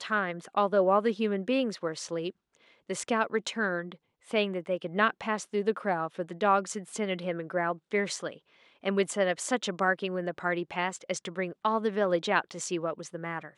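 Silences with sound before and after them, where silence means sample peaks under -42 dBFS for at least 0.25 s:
2.30–2.89 s
3.95–4.29 s
8.36–8.84 s

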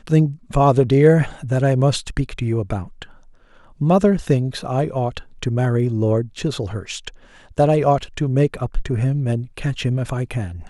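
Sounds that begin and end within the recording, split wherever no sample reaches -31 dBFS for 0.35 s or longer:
3.81–7.09 s

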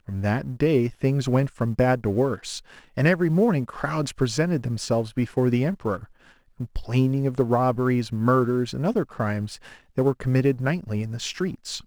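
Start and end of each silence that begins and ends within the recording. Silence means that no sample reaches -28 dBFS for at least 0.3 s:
2.58–2.97 s
5.97–6.60 s
9.55–9.98 s

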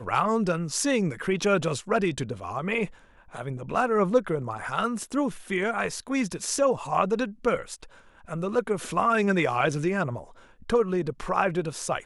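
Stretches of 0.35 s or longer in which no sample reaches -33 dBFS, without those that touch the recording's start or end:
2.86–3.35 s
7.83–8.29 s
10.21–10.70 s

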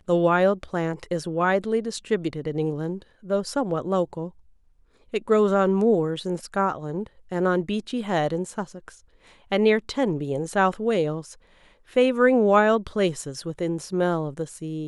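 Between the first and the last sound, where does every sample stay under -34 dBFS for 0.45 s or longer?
4.28–5.14 s
8.89–9.52 s
11.32–11.96 s

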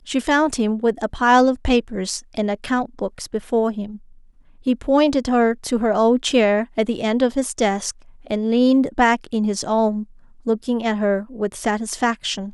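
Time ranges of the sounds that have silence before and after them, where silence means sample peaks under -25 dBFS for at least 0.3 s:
4.67–7.91 s
8.30–10.03 s

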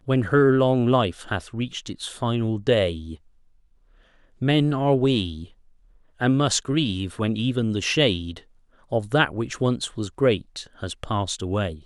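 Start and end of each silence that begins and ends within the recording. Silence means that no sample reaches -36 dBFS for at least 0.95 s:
3.15–4.41 s

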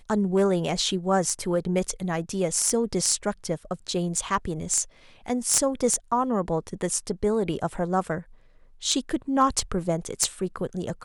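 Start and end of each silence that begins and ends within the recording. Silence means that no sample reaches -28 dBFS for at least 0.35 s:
4.83–5.28 s
8.19–8.83 s

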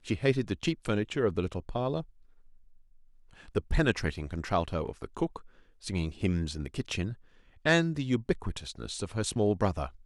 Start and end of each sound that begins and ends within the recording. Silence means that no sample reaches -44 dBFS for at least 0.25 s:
3.39–5.46 s
5.83–7.14 s

